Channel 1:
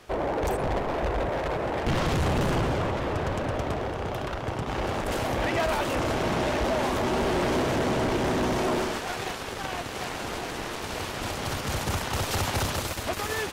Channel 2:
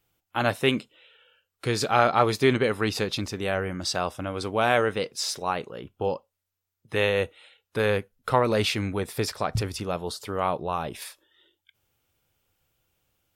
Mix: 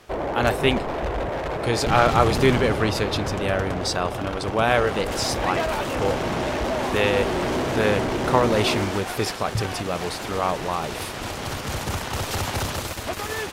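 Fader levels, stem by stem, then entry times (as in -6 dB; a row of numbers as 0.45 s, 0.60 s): +1.0 dB, +2.0 dB; 0.00 s, 0.00 s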